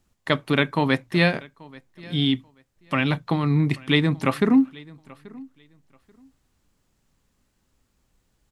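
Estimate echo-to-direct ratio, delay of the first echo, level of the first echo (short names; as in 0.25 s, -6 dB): -23.0 dB, 0.834 s, -23.0 dB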